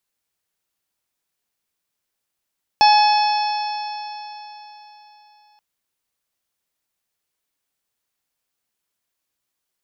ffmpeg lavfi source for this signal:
-f lavfi -i "aevalsrc='0.355*pow(10,-3*t/3.68)*sin(2*PI*840.38*t)+0.0447*pow(10,-3*t/3.68)*sin(2*PI*1689.04*t)+0.0841*pow(10,-3*t/3.68)*sin(2*PI*2554.1*t)+0.0447*pow(10,-3*t/3.68)*sin(2*PI*3443.46*t)+0.0794*pow(10,-3*t/3.68)*sin(2*PI*4364.61*t)+0.112*pow(10,-3*t/3.68)*sin(2*PI*5324.63*t)':d=2.78:s=44100"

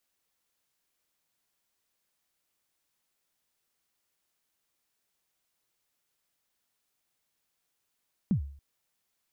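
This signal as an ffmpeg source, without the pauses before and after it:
-f lavfi -i "aevalsrc='0.106*pow(10,-3*t/0.52)*sin(2*PI*(230*0.099/log(70/230)*(exp(log(70/230)*min(t,0.099)/0.099)-1)+70*max(t-0.099,0)))':d=0.28:s=44100"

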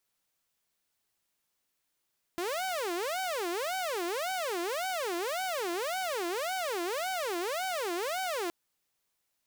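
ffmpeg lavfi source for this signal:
-f lavfi -i "aevalsrc='0.0376*(2*mod((550.5*t-210.5/(2*PI*1.8)*sin(2*PI*1.8*t)),1)-1)':d=6.12:s=44100"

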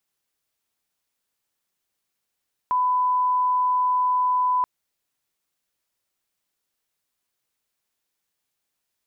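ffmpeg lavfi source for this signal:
-f lavfi -i "sine=f=1000:d=1.93:r=44100,volume=0.06dB"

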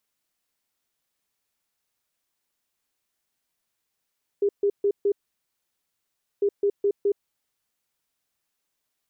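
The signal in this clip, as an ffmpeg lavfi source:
-f lavfi -i "aevalsrc='0.126*sin(2*PI*404*t)*clip(min(mod(mod(t,2),0.21),0.07-mod(mod(t,2),0.21))/0.005,0,1)*lt(mod(t,2),0.84)':d=4:s=44100"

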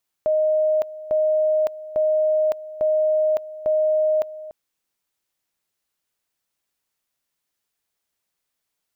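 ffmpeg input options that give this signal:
-f lavfi -i "aevalsrc='pow(10,(-16-16.5*gte(mod(t,0.85),0.56))/20)*sin(2*PI*620*t)':d=4.25:s=44100"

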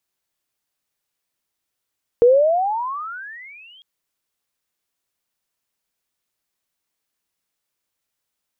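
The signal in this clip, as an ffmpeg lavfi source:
-f lavfi -i "aevalsrc='pow(10,(-7.5-37*t/1.6)/20)*sin(2*PI*463*1.6/(34*log(2)/12)*(exp(34*log(2)/12*t/1.6)-1))':d=1.6:s=44100"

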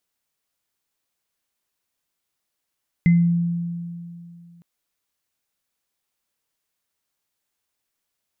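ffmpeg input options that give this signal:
-f lavfi -i "aevalsrc='0.299*pow(10,-3*t/2.58)*sin(2*PI*171*t)+0.0596*pow(10,-3*t/0.31)*sin(2*PI*2060*t)':d=1.56:s=44100"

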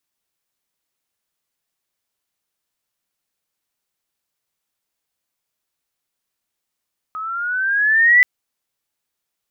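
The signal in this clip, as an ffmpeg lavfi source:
-f lavfi -i "aevalsrc='pow(10,(-7+18*(t/1.08-1))/20)*sin(2*PI*1260*1.08/(8*log(2)/12)*(exp(8*log(2)/12*t/1.08)-1))':d=1.08:s=44100"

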